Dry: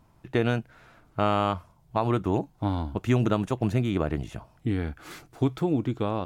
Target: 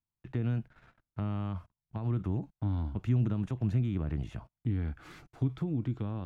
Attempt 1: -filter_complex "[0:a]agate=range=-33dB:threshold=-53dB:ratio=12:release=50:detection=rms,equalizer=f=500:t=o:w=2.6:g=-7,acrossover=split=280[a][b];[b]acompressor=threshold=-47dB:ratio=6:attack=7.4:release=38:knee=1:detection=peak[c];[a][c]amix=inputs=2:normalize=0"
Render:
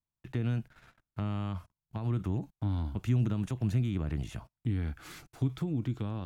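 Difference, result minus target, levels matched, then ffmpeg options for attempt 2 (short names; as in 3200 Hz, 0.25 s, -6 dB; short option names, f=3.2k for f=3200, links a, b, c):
2000 Hz band +3.0 dB
-filter_complex "[0:a]agate=range=-33dB:threshold=-53dB:ratio=12:release=50:detection=rms,equalizer=f=500:t=o:w=2.6:g=-7,acrossover=split=280[a][b];[b]acompressor=threshold=-47dB:ratio=6:attack=7.4:release=38:knee=1:detection=peak,lowpass=f=1.9k:p=1[c];[a][c]amix=inputs=2:normalize=0"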